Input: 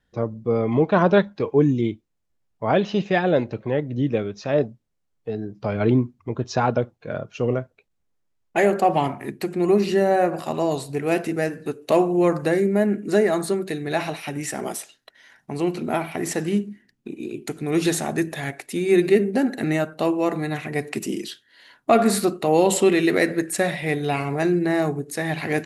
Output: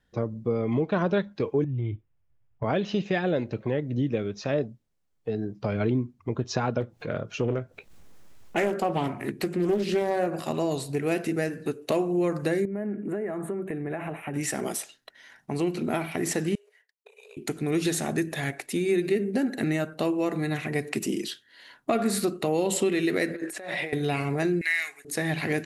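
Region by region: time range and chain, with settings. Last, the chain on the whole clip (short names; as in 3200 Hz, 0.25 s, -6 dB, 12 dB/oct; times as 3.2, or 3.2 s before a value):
1.64–2.64 polynomial smoothing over 25 samples + resonant low shelf 160 Hz +7 dB, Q 3 + compressor, threshold -24 dBFS
6.8–10.27 upward compressor, threshold -29 dBFS + doubler 18 ms -14 dB + Doppler distortion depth 0.35 ms
12.65–14.34 high shelf 3400 Hz -11 dB + compressor 4:1, threshold -28 dBFS + Butterworth band-stop 4800 Hz, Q 0.78
16.55–17.37 expander -53 dBFS + compressor, threshold -35 dBFS + brick-wall FIR high-pass 410 Hz
23.34–23.93 HPF 350 Hz + negative-ratio compressor -33 dBFS + high shelf 5500 Hz -10.5 dB
24.61–25.05 resonant high-pass 2100 Hz, resonance Q 8 + high shelf 3900 Hz +7 dB
whole clip: dynamic EQ 860 Hz, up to -5 dB, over -35 dBFS, Q 1.2; compressor 3:1, threshold -23 dBFS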